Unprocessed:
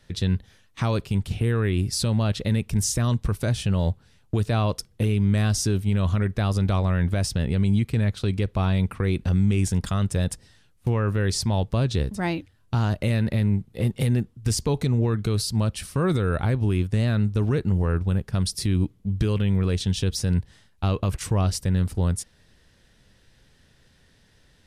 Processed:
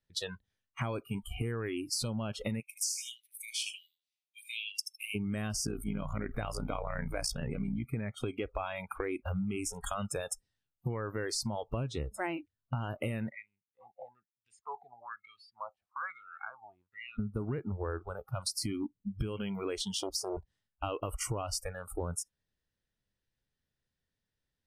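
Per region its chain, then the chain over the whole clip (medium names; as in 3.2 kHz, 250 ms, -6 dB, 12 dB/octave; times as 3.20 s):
2.60–5.15 s: steep high-pass 2.1 kHz 72 dB/octave + dynamic bell 4.6 kHz, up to +3 dB, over -43 dBFS, Q 1.2 + feedback delay 78 ms, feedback 26%, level -8 dB
5.65–7.85 s: AM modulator 59 Hz, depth 55% + level flattener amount 70%
13.29–17.19 s: bass shelf 130 Hz +7.5 dB + wah-wah 1.1 Hz 690–2900 Hz, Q 4.2
19.95–20.37 s: peaking EQ 370 Hz -9 dB 0.48 oct + de-hum 82.53 Hz, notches 3 + transformer saturation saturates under 390 Hz
whole clip: spectral noise reduction 29 dB; compression 10:1, threshold -31 dBFS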